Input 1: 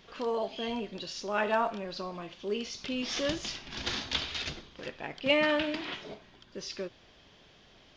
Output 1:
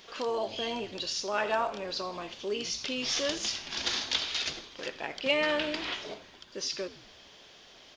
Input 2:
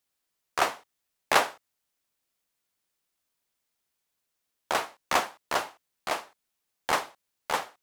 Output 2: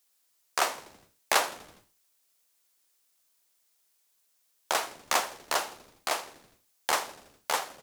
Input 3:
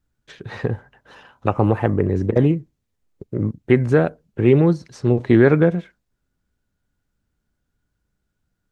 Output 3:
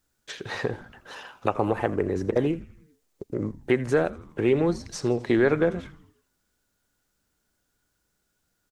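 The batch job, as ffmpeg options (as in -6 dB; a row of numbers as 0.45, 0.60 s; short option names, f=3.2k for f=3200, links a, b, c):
-filter_complex "[0:a]bass=f=250:g=-11,treble=f=4k:g=7,acompressor=threshold=-37dB:ratio=1.5,asplit=6[a][b][c][d][e][f];[b]adelay=82,afreqshift=-120,volume=-18dB[g];[c]adelay=164,afreqshift=-240,volume=-22.9dB[h];[d]adelay=246,afreqshift=-360,volume=-27.8dB[i];[e]adelay=328,afreqshift=-480,volume=-32.6dB[j];[f]adelay=410,afreqshift=-600,volume=-37.5dB[k];[a][g][h][i][j][k]amix=inputs=6:normalize=0,volume=4dB"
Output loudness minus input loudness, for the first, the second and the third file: +1.0, -1.0, -7.5 LU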